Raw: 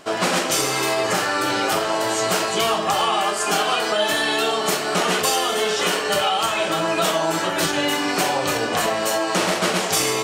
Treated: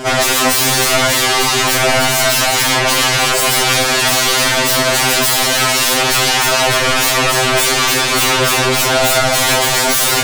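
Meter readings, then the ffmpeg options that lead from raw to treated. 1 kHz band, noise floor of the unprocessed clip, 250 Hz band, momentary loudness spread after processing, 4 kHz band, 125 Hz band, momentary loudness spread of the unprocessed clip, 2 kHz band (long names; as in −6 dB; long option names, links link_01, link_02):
+5.5 dB, −25 dBFS, +4.0 dB, 1 LU, +10.0 dB, +11.0 dB, 2 LU, +9.5 dB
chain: -af "lowshelf=frequency=320:gain=7,aeval=exprs='0.398*sin(PI/2*5.62*val(0)/0.398)':channel_layout=same,afftfilt=real='re*2.45*eq(mod(b,6),0)':imag='im*2.45*eq(mod(b,6),0)':win_size=2048:overlap=0.75"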